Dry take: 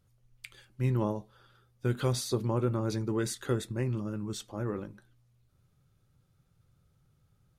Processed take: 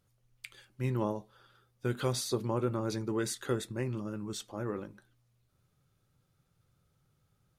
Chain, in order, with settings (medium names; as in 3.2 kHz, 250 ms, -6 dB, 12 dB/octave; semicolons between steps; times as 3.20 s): bass shelf 170 Hz -7.5 dB